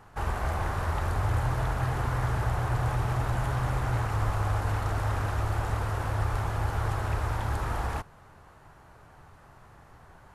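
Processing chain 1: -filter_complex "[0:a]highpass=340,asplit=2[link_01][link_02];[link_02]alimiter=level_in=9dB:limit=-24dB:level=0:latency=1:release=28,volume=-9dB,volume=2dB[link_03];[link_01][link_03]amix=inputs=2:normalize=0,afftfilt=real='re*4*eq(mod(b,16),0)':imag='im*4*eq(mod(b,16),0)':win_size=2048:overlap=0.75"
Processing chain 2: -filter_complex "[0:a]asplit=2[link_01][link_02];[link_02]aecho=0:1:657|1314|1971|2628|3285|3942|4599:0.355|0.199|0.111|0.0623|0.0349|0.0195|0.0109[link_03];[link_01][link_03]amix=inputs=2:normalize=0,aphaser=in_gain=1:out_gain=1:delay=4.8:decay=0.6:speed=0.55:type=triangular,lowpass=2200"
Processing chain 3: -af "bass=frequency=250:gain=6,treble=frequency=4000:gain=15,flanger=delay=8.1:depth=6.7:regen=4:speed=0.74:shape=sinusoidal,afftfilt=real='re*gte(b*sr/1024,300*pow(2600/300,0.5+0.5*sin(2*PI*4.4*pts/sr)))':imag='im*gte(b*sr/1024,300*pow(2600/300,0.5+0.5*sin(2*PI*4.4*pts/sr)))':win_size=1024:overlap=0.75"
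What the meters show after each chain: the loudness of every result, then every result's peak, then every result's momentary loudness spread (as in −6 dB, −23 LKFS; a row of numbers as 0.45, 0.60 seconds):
−33.5, −27.0, −37.5 LKFS; −21.5, −10.5, −22.0 dBFS; 19, 15, 1 LU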